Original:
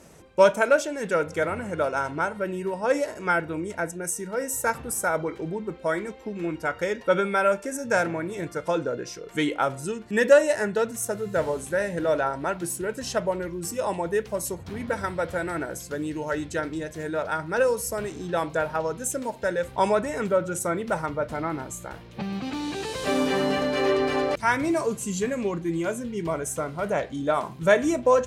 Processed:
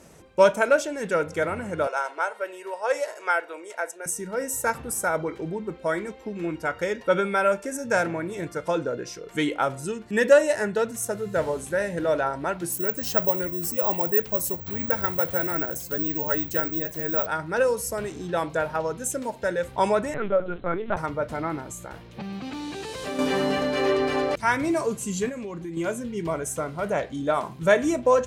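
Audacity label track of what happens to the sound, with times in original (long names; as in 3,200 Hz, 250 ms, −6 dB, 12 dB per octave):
1.870000	4.060000	high-pass filter 480 Hz 24 dB per octave
12.720000	17.260000	bad sample-rate conversion rate divided by 2×, down none, up zero stuff
20.140000	20.970000	linear-prediction vocoder at 8 kHz pitch kept
21.590000	23.190000	downward compressor 2 to 1, threshold −33 dBFS
25.290000	25.770000	downward compressor, threshold −31 dBFS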